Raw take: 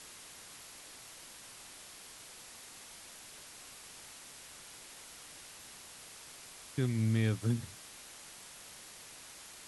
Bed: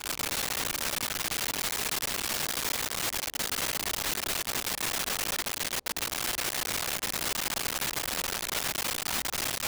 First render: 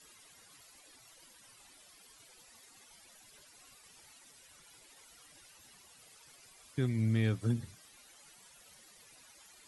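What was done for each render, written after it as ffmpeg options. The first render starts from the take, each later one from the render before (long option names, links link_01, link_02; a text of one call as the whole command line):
ffmpeg -i in.wav -af "afftdn=noise_reduction=14:noise_floor=-52" out.wav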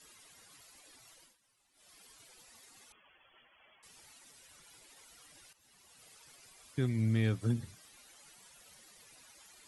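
ffmpeg -i in.wav -filter_complex "[0:a]asettb=1/sr,asplit=3[link_01][link_02][link_03];[link_01]atrim=end=2.924[link_04];[link_02]atrim=start=2.92:end=3.83,asetpts=PTS-STARTPTS,afade=type=in:duration=0.004:curve=qsin,afade=type=out:start_time=0.906:duration=0.004:curve=qsin,lowpass=frequency=2900:width_type=q:width=0.5098,lowpass=frequency=2900:width_type=q:width=0.6013,lowpass=frequency=2900:width_type=q:width=0.9,lowpass=frequency=2900:width_type=q:width=2.563,afreqshift=-3400[link_05];[link_03]atrim=start=3.826[link_06];[link_04][link_05]acrossfade=duration=0.004:curve1=hsin:curve2=qsin[link_07];[link_07][link_06]acrossfade=duration=0.004:curve1=qsin:curve2=hsin,asplit=4[link_08][link_09][link_10][link_11];[link_08]atrim=end=1.37,asetpts=PTS-STARTPTS,afade=type=out:start_time=1.07:duration=0.3:curve=qsin:silence=0.158489[link_12];[link_09]atrim=start=1.37:end=1.73,asetpts=PTS-STARTPTS,volume=-16dB[link_13];[link_10]atrim=start=1.73:end=5.53,asetpts=PTS-STARTPTS,afade=type=in:duration=0.3:curve=qsin:silence=0.158489,afade=type=out:start_time=3.796:duration=0.004:curve=hsin:silence=0.199526[link_14];[link_11]atrim=start=5.53,asetpts=PTS-STARTPTS,afade=type=in:duration=0.53:silence=0.199526[link_15];[link_12][link_13][link_14][link_15]concat=n=4:v=0:a=1" out.wav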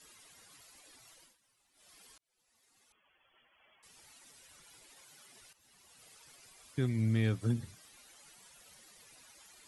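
ffmpeg -i in.wav -filter_complex "[0:a]asettb=1/sr,asplit=3[link_01][link_02][link_03];[link_01]atrim=end=5.014[link_04];[link_02]atrim=start=5.01:end=5.41,asetpts=PTS-STARTPTS,afade=type=in:duration=0.004:curve=qsin,afade=type=out:start_time=0.396:duration=0.004:curve=qsin,afreqshift=100[link_05];[link_03]atrim=start=5.406[link_06];[link_04][link_05]acrossfade=duration=0.004:curve1=hsin:curve2=qsin[link_07];[link_07][link_06]acrossfade=duration=0.004:curve1=qsin:curve2=hsin,asplit=2[link_08][link_09];[link_08]atrim=end=2.18,asetpts=PTS-STARTPTS,afade=type=out:start_time=2.176:duration=0.004:curve=hsin[link_10];[link_09]atrim=start=2.18,asetpts=PTS-STARTPTS,afade=type=in:duration=2.09[link_11];[link_10][link_11]concat=n=2:v=0:a=1" out.wav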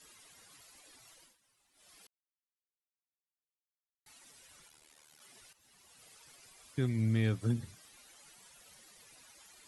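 ffmpeg -i in.wav -filter_complex "[0:a]asplit=3[link_01][link_02][link_03];[link_01]afade=type=out:start_time=4.67:duration=0.02[link_04];[link_02]tremolo=f=76:d=0.889,afade=type=in:start_time=4.67:duration=0.02,afade=type=out:start_time=5.2:duration=0.02[link_05];[link_03]afade=type=in:start_time=5.2:duration=0.02[link_06];[link_04][link_05][link_06]amix=inputs=3:normalize=0,asplit=3[link_07][link_08][link_09];[link_07]atrim=end=2.07,asetpts=PTS-STARTPTS,afade=type=out:start_time=2.066:duration=0.004:curve=hsin[link_10];[link_08]atrim=start=2.07:end=4.06,asetpts=PTS-STARTPTS,volume=0[link_11];[link_09]atrim=start=4.06,asetpts=PTS-STARTPTS,afade=type=in:duration=0.004:curve=hsin[link_12];[link_10][link_11][link_12]concat=n=3:v=0:a=1" out.wav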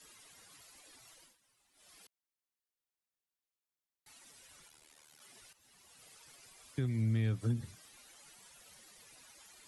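ffmpeg -i in.wav -filter_complex "[0:a]acrossover=split=160[link_01][link_02];[link_02]acompressor=threshold=-37dB:ratio=6[link_03];[link_01][link_03]amix=inputs=2:normalize=0" out.wav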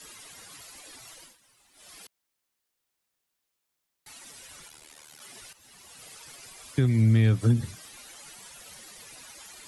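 ffmpeg -i in.wav -af "volume=11.5dB" out.wav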